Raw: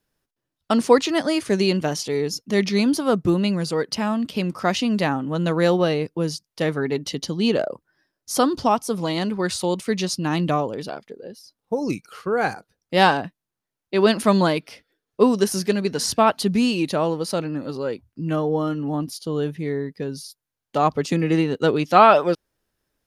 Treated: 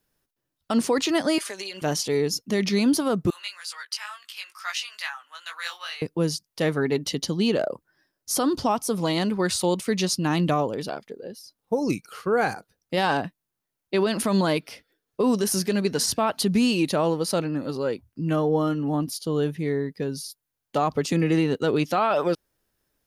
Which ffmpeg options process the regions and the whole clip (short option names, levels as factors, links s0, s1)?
-filter_complex "[0:a]asettb=1/sr,asplit=3[s0][s1][s2];[s0]atrim=end=1.384[s3];[s1]atrim=start=1.38:end=1.82,asetpts=PTS-STARTPTS,afade=t=in:d=0.004:c=qsin,afade=t=out:st=0.436:d=0.004:c=qsin,highpass=850,aecho=1:1:5:0.99,atrim=end_sample=19404,acompressor=threshold=0.0316:ratio=12:attack=3.2:release=140:knee=1:detection=peak[s4];[s2]atrim=start=1.816[s5];[s3][s4]acrossfade=d=0.004:c1=hsin:c2=qsin[s6];[s6][s5]acrossfade=d=0.004:c1=qsin:c2=hsin,asettb=1/sr,asplit=3[s7][s8][s9];[s7]atrim=end=3.304[s10];[s8]atrim=start=3.3:end=6.02,asetpts=PTS-STARTPTS,afade=t=in:d=0.004:c=qsin,afade=t=out:st=2.716:d=0.004:c=qsin,highpass=f=1300:w=0.5412,highpass=f=1300:w=1.3066,flanger=delay=15.5:depth=4.9:speed=2.2[s11];[s9]atrim=start=6.016[s12];[s10][s11]acrossfade=d=0.004:c1=hsin:c2=qsin[s13];[s13][s12]acrossfade=d=0.004:c1=qsin:c2=hsin,highshelf=f=11000:g=8,alimiter=limit=0.224:level=0:latency=1:release=48"